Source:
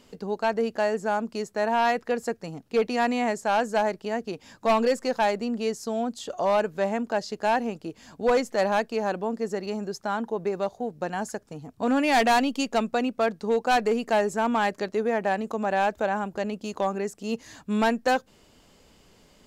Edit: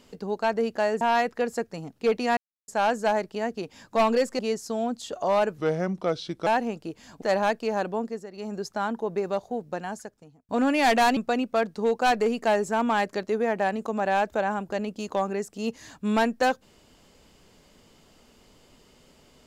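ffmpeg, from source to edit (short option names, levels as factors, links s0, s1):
-filter_complex "[0:a]asplit=12[s0][s1][s2][s3][s4][s5][s6][s7][s8][s9][s10][s11];[s0]atrim=end=1.012[s12];[s1]atrim=start=1.708:end=3.07,asetpts=PTS-STARTPTS,afade=t=out:st=1.358:d=0.004:c=hsin[s13];[s2]atrim=start=3.07:end=3.38,asetpts=PTS-STARTPTS,volume=0[s14];[s3]atrim=start=3.38:end=5.092,asetpts=PTS-STARTPTS,afade=t=in:d=0.004:c=hsin[s15];[s4]atrim=start=5.558:end=6.754[s16];[s5]atrim=start=6.75:end=7.46,asetpts=PTS-STARTPTS,asetrate=35280,aresample=44100[s17];[s6]atrim=start=7.456:end=8.212[s18];[s7]atrim=start=8.508:end=9.55,asetpts=PTS-STARTPTS,afade=t=out:st=0.782:d=0.26:silence=0.266073[s19];[s8]atrim=start=9.55:end=9.61,asetpts=PTS-STARTPTS,volume=0.266[s20];[s9]atrim=start=9.61:end=11.78,asetpts=PTS-STARTPTS,afade=t=in:d=0.26:silence=0.266073,afade=t=out:st=1.25:d=0.92[s21];[s10]atrim=start=11.78:end=12.462,asetpts=PTS-STARTPTS,afade=t=in:d=0.004:c=hsin[s22];[s11]atrim=start=12.818[s23];[s13][s14][s15]concat=n=3:v=0:a=1[s24];[s12][s24]acrossfade=d=0.004:c1=hsin:c2=hsin[s25];[s25][s16]acrossfade=d=0.004:c1=hsin:c2=hsin[s26];[s26][s17]acrossfade=d=0.004:c1=hsin:c2=hsin[s27];[s27][s18]acrossfade=d=0.004:c1=hsin:c2=hsin[s28];[s19][s20][s21][s22]concat=n=4:v=0:a=1[s29];[s28][s29]acrossfade=d=0.004:c1=hsin:c2=hsin[s30];[s30][s23]acrossfade=d=0.004:c1=hsin:c2=hsin"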